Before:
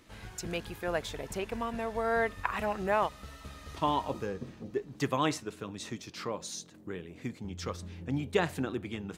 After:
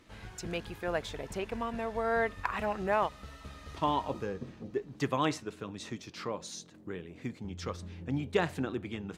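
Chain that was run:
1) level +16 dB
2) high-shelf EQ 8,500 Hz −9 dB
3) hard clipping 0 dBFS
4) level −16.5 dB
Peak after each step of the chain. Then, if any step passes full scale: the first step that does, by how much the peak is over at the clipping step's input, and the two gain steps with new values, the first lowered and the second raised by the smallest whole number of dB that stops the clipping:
+3.5, +3.5, 0.0, −16.5 dBFS
step 1, 3.5 dB
step 1 +12 dB, step 4 −12.5 dB

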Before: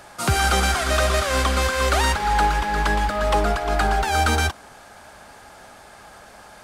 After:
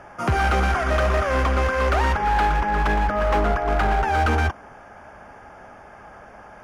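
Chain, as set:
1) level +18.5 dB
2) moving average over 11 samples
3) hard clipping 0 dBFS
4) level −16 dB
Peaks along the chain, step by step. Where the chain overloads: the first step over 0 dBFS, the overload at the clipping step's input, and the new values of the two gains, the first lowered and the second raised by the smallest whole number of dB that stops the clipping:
+8.5, +7.5, 0.0, −16.0 dBFS
step 1, 7.5 dB
step 1 +10.5 dB, step 4 −8 dB

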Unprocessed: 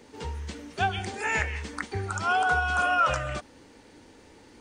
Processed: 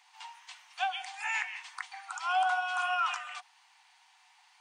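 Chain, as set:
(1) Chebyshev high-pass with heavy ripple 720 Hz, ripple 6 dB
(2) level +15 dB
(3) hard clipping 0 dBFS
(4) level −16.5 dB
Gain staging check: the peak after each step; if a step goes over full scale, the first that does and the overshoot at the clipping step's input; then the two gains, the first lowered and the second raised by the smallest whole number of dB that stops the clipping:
−17.0, −2.0, −2.0, −18.5 dBFS
no step passes full scale

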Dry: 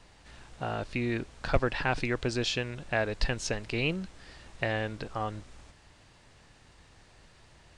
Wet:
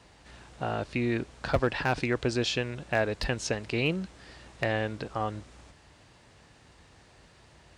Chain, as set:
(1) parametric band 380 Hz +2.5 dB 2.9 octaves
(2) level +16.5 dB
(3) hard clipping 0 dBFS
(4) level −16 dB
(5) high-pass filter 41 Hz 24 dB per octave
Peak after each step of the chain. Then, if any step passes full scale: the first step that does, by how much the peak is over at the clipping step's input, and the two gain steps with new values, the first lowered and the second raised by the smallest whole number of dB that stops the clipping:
−9.5, +7.0, 0.0, −16.0, −12.0 dBFS
step 2, 7.0 dB
step 2 +9.5 dB, step 4 −9 dB

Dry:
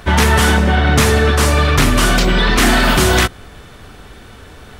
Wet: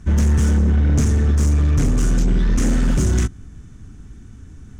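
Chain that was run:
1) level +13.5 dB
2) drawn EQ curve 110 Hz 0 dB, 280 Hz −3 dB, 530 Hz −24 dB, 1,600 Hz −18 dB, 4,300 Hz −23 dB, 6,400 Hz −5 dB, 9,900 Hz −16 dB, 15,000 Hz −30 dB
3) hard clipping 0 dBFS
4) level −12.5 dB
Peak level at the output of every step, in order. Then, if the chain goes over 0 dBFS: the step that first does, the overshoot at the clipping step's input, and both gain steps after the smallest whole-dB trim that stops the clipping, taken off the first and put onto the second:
+11.0, +8.5, 0.0, −12.5 dBFS
step 1, 8.5 dB
step 1 +4.5 dB, step 4 −3.5 dB

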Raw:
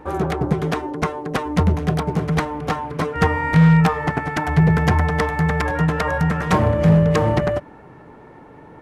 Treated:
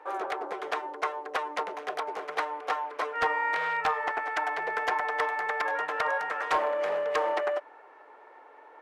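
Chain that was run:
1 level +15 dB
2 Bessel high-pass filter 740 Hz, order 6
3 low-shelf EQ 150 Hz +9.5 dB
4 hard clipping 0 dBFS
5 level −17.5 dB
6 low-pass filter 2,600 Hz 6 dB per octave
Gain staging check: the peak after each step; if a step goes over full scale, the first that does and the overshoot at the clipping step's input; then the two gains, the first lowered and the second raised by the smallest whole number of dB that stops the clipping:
+8.0, +8.0, +8.0, 0.0, −17.5, −17.5 dBFS
step 1, 8.0 dB
step 1 +7 dB, step 5 −9.5 dB

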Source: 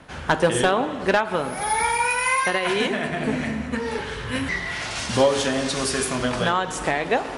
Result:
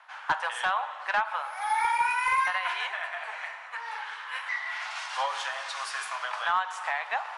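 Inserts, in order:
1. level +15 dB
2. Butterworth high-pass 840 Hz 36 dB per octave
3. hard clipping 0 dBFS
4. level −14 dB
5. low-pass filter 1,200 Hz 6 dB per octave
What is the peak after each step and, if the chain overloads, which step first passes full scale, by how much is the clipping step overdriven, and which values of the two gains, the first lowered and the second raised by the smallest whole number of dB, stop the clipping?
+5.5, +7.0, 0.0, −14.0, −15.0 dBFS
step 1, 7.0 dB
step 1 +8 dB, step 4 −7 dB

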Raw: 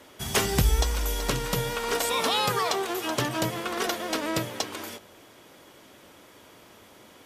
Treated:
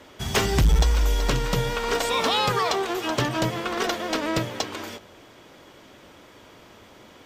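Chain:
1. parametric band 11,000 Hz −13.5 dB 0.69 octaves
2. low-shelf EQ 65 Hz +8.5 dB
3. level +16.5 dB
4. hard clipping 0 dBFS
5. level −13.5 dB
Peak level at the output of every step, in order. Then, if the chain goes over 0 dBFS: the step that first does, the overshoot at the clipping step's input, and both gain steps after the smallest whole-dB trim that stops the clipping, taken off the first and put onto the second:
−12.5, −8.5, +8.0, 0.0, −13.5 dBFS
step 3, 8.0 dB
step 3 +8.5 dB, step 5 −5.5 dB

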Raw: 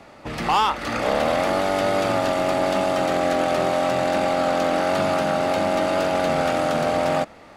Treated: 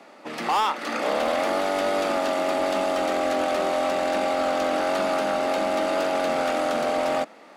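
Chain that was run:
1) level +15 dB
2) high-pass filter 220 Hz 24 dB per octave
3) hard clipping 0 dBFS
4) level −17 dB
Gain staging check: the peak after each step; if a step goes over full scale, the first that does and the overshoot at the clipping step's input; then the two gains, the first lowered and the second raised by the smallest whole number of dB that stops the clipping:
+1.5, +6.5, 0.0, −17.0 dBFS
step 1, 6.5 dB
step 1 +8 dB, step 4 −10 dB

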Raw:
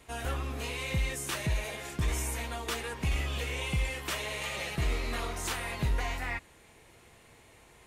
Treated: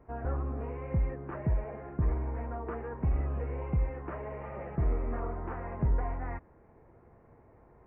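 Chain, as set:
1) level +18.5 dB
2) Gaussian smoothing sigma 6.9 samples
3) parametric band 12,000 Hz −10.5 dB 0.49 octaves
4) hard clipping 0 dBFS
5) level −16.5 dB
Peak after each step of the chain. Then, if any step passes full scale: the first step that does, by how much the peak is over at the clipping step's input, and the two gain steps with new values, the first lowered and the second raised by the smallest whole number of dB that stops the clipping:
−3.0, −3.5, −3.5, −3.5, −20.0 dBFS
no step passes full scale

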